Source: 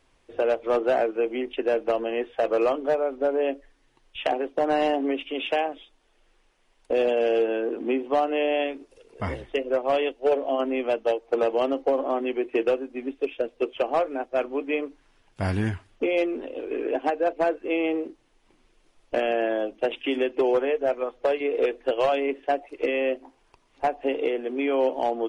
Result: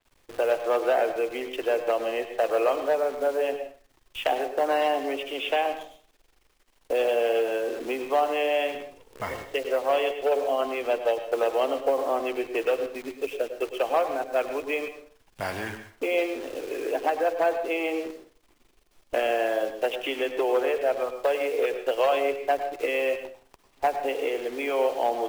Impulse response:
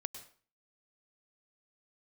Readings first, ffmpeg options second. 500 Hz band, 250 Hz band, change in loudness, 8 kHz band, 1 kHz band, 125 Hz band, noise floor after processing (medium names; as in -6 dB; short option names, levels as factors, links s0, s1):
-1.0 dB, -6.5 dB, -1.0 dB, no reading, +1.0 dB, -13.5 dB, -64 dBFS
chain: -filter_complex "[0:a]acrossover=split=410|2200[s0][s1][s2];[s0]acompressor=threshold=0.00708:ratio=12[s3];[s3][s1][s2]amix=inputs=3:normalize=0,acrusher=bits=8:dc=4:mix=0:aa=0.000001[s4];[1:a]atrim=start_sample=2205[s5];[s4][s5]afir=irnorm=-1:irlink=0,adynamicequalizer=threshold=0.00447:dfrequency=4700:dqfactor=0.7:tfrequency=4700:tqfactor=0.7:attack=5:release=100:ratio=0.375:range=2.5:mode=cutabove:tftype=highshelf,volume=1.41"